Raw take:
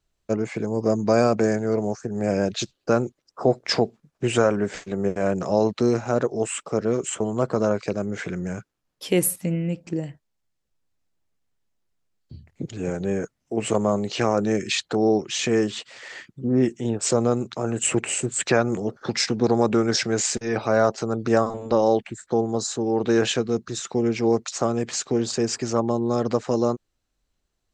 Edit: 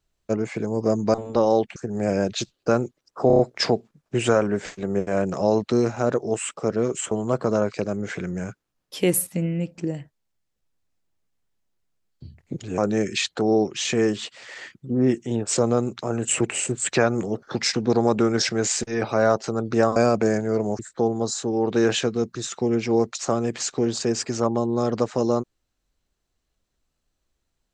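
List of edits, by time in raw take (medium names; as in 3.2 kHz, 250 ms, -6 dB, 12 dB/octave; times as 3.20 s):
1.14–1.97 s: swap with 21.50–22.12 s
3.48 s: stutter 0.03 s, 5 plays
12.87–14.32 s: delete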